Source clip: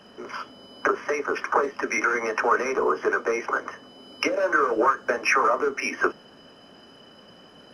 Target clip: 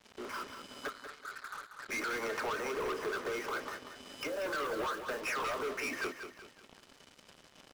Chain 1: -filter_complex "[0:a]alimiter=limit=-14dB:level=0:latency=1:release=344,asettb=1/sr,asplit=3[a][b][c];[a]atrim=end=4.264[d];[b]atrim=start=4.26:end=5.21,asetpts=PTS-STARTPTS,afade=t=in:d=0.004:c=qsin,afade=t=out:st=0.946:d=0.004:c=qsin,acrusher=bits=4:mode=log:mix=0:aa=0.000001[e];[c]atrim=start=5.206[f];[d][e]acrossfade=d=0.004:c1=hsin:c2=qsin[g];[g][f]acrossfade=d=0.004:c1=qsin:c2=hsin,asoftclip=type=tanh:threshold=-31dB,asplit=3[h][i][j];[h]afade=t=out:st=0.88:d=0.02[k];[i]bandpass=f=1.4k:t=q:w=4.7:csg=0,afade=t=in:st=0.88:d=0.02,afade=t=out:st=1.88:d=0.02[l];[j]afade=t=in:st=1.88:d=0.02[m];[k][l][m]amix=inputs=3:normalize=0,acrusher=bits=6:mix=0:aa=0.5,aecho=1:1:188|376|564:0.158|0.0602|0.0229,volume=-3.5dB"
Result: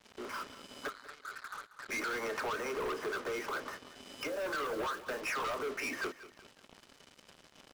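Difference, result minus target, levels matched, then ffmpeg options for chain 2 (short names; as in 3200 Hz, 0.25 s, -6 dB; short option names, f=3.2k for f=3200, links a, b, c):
echo-to-direct -7 dB
-filter_complex "[0:a]alimiter=limit=-14dB:level=0:latency=1:release=344,asettb=1/sr,asplit=3[a][b][c];[a]atrim=end=4.264[d];[b]atrim=start=4.26:end=5.21,asetpts=PTS-STARTPTS,afade=t=in:d=0.004:c=qsin,afade=t=out:st=0.946:d=0.004:c=qsin,acrusher=bits=4:mode=log:mix=0:aa=0.000001[e];[c]atrim=start=5.206[f];[d][e]acrossfade=d=0.004:c1=hsin:c2=qsin[g];[g][f]acrossfade=d=0.004:c1=qsin:c2=hsin,asoftclip=type=tanh:threshold=-31dB,asplit=3[h][i][j];[h]afade=t=out:st=0.88:d=0.02[k];[i]bandpass=f=1.4k:t=q:w=4.7:csg=0,afade=t=in:st=0.88:d=0.02,afade=t=out:st=1.88:d=0.02[l];[j]afade=t=in:st=1.88:d=0.02[m];[k][l][m]amix=inputs=3:normalize=0,acrusher=bits=6:mix=0:aa=0.5,aecho=1:1:188|376|564|752:0.355|0.135|0.0512|0.0195,volume=-3.5dB"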